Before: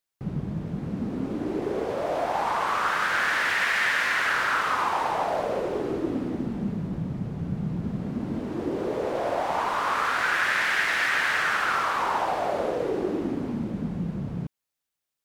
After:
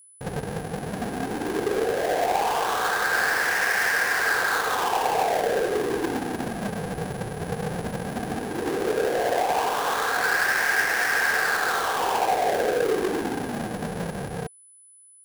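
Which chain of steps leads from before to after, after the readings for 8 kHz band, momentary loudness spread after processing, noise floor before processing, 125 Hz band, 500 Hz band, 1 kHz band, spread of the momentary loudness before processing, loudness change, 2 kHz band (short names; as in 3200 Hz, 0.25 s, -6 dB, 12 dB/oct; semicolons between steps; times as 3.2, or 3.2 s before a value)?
+8.5 dB, 10 LU, -85 dBFS, -2.5 dB, +4.0 dB, +1.5 dB, 9 LU, +1.5 dB, +2.0 dB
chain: half-waves squared off; small resonant body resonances 460/740/1600 Hz, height 11 dB, ringing for 25 ms; whine 10000 Hz -43 dBFS; gain -6.5 dB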